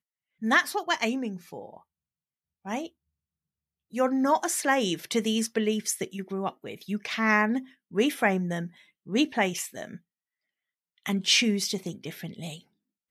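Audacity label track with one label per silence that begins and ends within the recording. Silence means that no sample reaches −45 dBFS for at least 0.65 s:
1.780000	2.650000	silence
2.880000	3.930000	silence
9.970000	11.060000	silence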